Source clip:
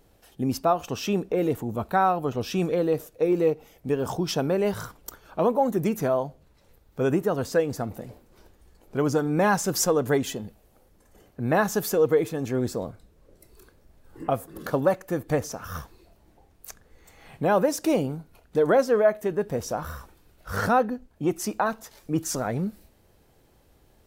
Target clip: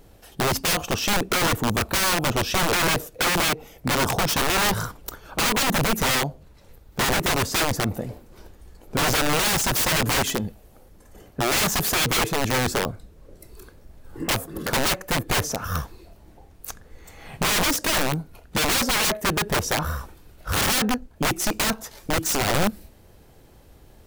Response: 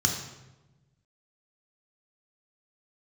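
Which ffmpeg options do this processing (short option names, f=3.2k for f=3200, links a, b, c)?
-af "aeval=exprs='(mod(15*val(0)+1,2)-1)/15':c=same,lowshelf=f=150:g=3.5,volume=7dB"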